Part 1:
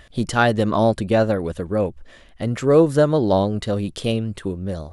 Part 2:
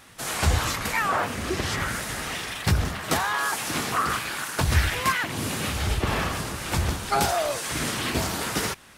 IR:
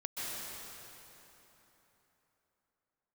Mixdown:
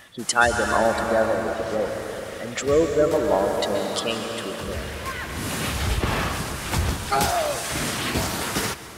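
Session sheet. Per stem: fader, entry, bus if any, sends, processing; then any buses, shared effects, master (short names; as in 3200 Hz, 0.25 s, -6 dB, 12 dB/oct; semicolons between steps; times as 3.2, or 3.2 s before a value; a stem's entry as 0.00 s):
-3.0 dB, 0.00 s, send -3 dB, spectral gate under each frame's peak -20 dB strong; HPF 310 Hz 6 dB/oct; tilt +3 dB/oct
+0.5 dB, 0.00 s, send -15 dB, auto duck -19 dB, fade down 0.30 s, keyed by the first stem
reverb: on, RT60 3.6 s, pre-delay 0.118 s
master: dry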